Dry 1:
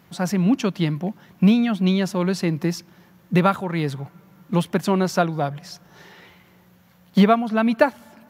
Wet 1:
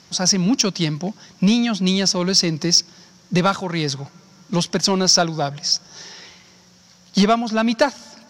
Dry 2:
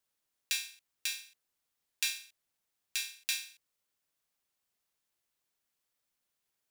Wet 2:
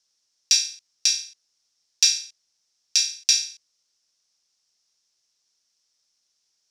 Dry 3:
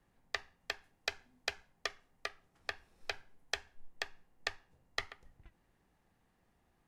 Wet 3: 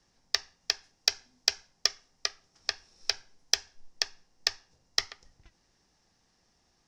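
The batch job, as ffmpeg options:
ffmpeg -i in.wav -af "lowpass=frequency=5500:width_type=q:width=5.3,acontrast=62,bass=frequency=250:gain=-2,treble=frequency=4000:gain=9,volume=-4.5dB" out.wav

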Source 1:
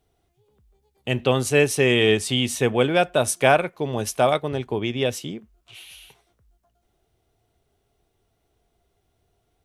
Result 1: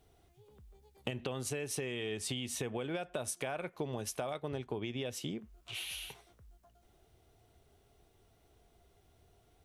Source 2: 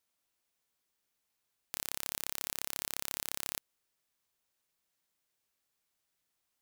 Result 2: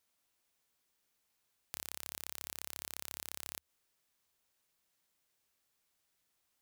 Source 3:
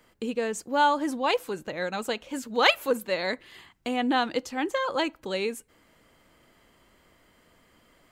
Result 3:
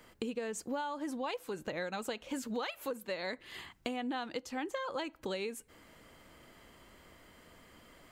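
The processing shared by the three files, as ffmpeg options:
ffmpeg -i in.wav -af "alimiter=limit=-13.5dB:level=0:latency=1:release=143,equalizer=frequency=75:width=4.7:gain=3,acompressor=threshold=-37dB:ratio=10,volume=2.5dB" out.wav

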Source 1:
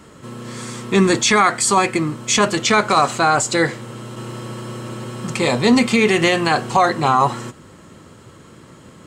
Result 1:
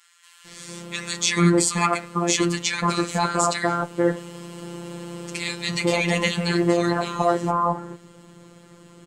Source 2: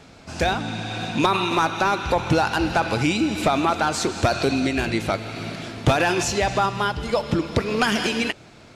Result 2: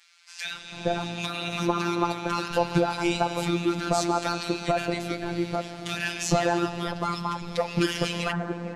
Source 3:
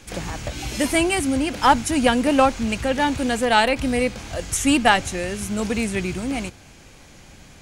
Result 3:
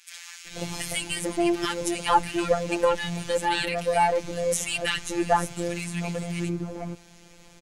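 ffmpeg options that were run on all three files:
ffmpeg -i in.wav -filter_complex "[0:a]acrossover=split=1500[link_01][link_02];[link_01]adelay=450[link_03];[link_03][link_02]amix=inputs=2:normalize=0,afftfilt=real='hypot(re,im)*cos(PI*b)':imag='0':win_size=1024:overlap=0.75,volume=-1dB" out.wav

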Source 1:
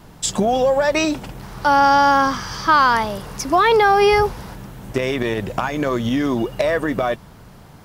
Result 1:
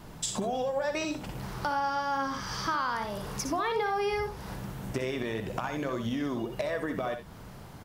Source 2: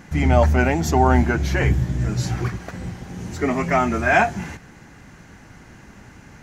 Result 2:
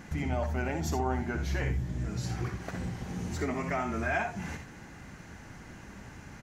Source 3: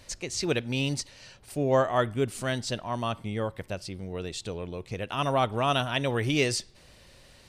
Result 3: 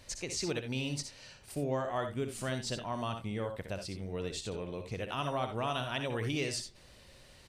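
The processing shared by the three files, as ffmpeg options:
ffmpeg -i in.wav -filter_complex "[0:a]acompressor=threshold=-29dB:ratio=3,asplit=2[link_01][link_02];[link_02]aecho=0:1:62|75|77|88:0.376|0.119|0.141|0.168[link_03];[link_01][link_03]amix=inputs=2:normalize=0,volume=-3.5dB" out.wav

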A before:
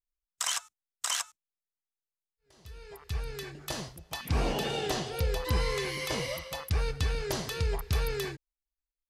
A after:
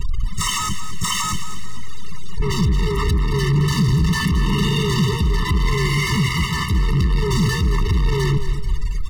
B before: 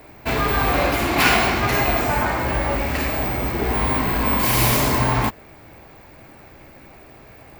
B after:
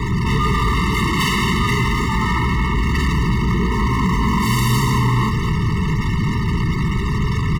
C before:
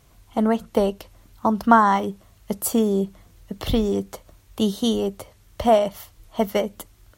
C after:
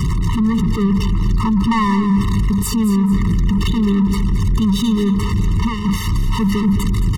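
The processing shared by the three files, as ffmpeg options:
ffmpeg -i in.wav -filter_complex "[0:a]aeval=exprs='val(0)+0.5*0.158*sgn(val(0))':channel_layout=same,afftfilt=real='re*gte(hypot(re,im),0.0398)':imag='im*gte(hypot(re,im),0.0398)':win_size=1024:overlap=0.75,acrossover=split=230[link_01][link_02];[link_01]alimiter=limit=-22dB:level=0:latency=1[link_03];[link_02]adynamicsmooth=sensitivity=4:basefreq=3800[link_04];[link_03][link_04]amix=inputs=2:normalize=0,lowshelf=frequency=230:width_type=q:width=3:gain=6.5,asoftclip=type=tanh:threshold=-16dB,asplit=2[link_05][link_06];[link_06]aecho=0:1:220|440|660|880:0.282|0.101|0.0365|0.0131[link_07];[link_05][link_07]amix=inputs=2:normalize=0,afftfilt=real='re*eq(mod(floor(b*sr/1024/440),2),0)':imag='im*eq(mod(floor(b*sr/1024/440),2),0)':win_size=1024:overlap=0.75,volume=3.5dB" out.wav

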